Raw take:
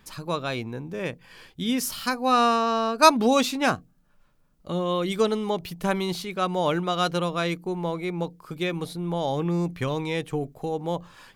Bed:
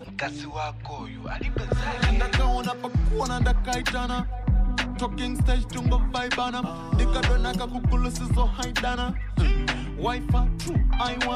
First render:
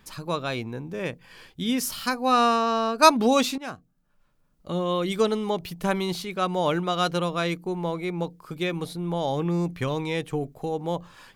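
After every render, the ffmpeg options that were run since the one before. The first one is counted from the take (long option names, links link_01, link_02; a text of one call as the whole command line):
ffmpeg -i in.wav -filter_complex "[0:a]asplit=2[link_01][link_02];[link_01]atrim=end=3.58,asetpts=PTS-STARTPTS,afade=type=out:start_time=3.576:duration=0.004:curve=hsin:silence=0.158489[link_03];[link_02]atrim=start=3.58,asetpts=PTS-STARTPTS,afade=type=in:duration=1.19:silence=0.158489[link_04];[link_03][link_04]concat=n=2:v=0:a=1" out.wav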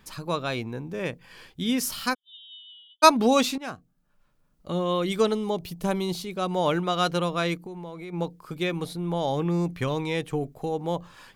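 ffmpeg -i in.wav -filter_complex "[0:a]asplit=3[link_01][link_02][link_03];[link_01]afade=type=out:start_time=2.13:duration=0.02[link_04];[link_02]asuperpass=centerf=3300:order=20:qfactor=4.5,afade=type=in:start_time=2.13:duration=0.02,afade=type=out:start_time=3.02:duration=0.02[link_05];[link_03]afade=type=in:start_time=3.02:duration=0.02[link_06];[link_04][link_05][link_06]amix=inputs=3:normalize=0,asettb=1/sr,asplit=3[link_07][link_08][link_09];[link_07]atrim=end=5.334[link_10];[link_08]atrim=start=5.33:end=6.51,asetpts=PTS-STARTPTS,afade=type=in:duration=0.004:curve=qsin,afade=type=out:start_time=1.176:duration=0.004:curve=qsin,equalizer=frequency=1700:width=0.83:gain=-7[link_11];[link_09]atrim=start=6.506[link_12];[link_10][link_11]acrossfade=duration=0.004:curve1=hsin:curve2=qsin[link_13];[link_13][link_12]acrossfade=duration=0.004:curve1=qsin:curve2=hsin,asplit=3[link_14][link_15][link_16];[link_14]afade=type=out:start_time=7.57:duration=0.02[link_17];[link_15]acompressor=threshold=-35dB:ratio=6:attack=3.2:release=140:knee=1:detection=peak,afade=type=in:start_time=7.57:duration=0.02,afade=type=out:start_time=8.12:duration=0.02[link_18];[link_16]afade=type=in:start_time=8.12:duration=0.02[link_19];[link_17][link_18][link_19]amix=inputs=3:normalize=0" out.wav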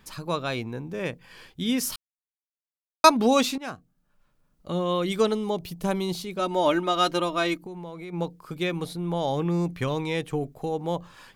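ffmpeg -i in.wav -filter_complex "[0:a]asettb=1/sr,asplit=3[link_01][link_02][link_03];[link_01]atrim=end=6.394[link_04];[link_02]atrim=start=6.39:end=7.63,asetpts=PTS-STARTPTS,afade=type=in:duration=0.004:curve=qsin,afade=type=out:start_time=1.236:duration=0.004:curve=qsin,aecho=1:1:3.2:0.65,atrim=end_sample=54684[link_05];[link_03]atrim=start=7.626[link_06];[link_04][link_05]acrossfade=duration=0.004:curve1=hsin:curve2=qsin[link_07];[link_07][link_06]acrossfade=duration=0.004:curve1=qsin:curve2=hsin,asplit=3[link_08][link_09][link_10];[link_08]atrim=end=1.96,asetpts=PTS-STARTPTS,afade=type=out:start_time=1.956:duration=0.004:curve=hsin[link_11];[link_09]atrim=start=1.96:end=3.04,asetpts=PTS-STARTPTS,volume=0[link_12];[link_10]atrim=start=3.04,asetpts=PTS-STARTPTS,afade=type=in:duration=0.004:curve=hsin[link_13];[link_11][link_12][link_13]concat=n=3:v=0:a=1" out.wav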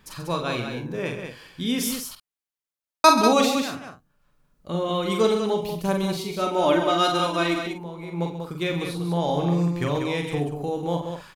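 ffmpeg -i in.wav -filter_complex "[0:a]asplit=2[link_01][link_02];[link_02]adelay=48,volume=-9dB[link_03];[link_01][link_03]amix=inputs=2:normalize=0,aecho=1:1:41|132|192:0.501|0.282|0.473" out.wav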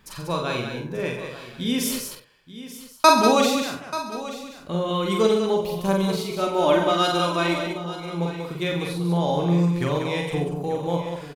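ffmpeg -i in.wav -filter_complex "[0:a]asplit=2[link_01][link_02];[link_02]adelay=46,volume=-6.5dB[link_03];[link_01][link_03]amix=inputs=2:normalize=0,aecho=1:1:885:0.188" out.wav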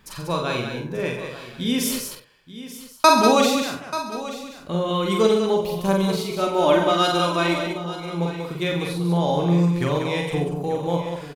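ffmpeg -i in.wav -af "volume=1.5dB,alimiter=limit=-2dB:level=0:latency=1" out.wav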